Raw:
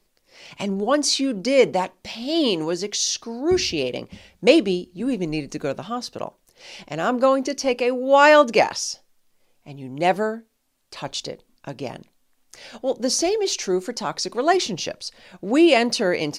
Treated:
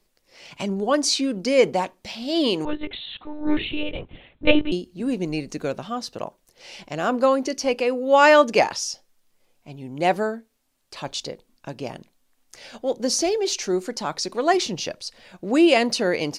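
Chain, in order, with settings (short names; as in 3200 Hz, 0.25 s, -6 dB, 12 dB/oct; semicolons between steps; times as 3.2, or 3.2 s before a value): 2.65–4.72 monotone LPC vocoder at 8 kHz 300 Hz; gain -1 dB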